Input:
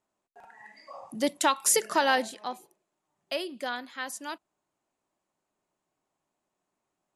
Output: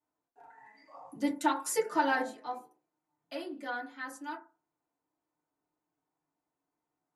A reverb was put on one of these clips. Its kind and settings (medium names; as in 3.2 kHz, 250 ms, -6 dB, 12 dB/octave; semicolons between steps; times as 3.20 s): FDN reverb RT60 0.33 s, low-frequency decay 1×, high-frequency decay 0.3×, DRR -9 dB; trim -15.5 dB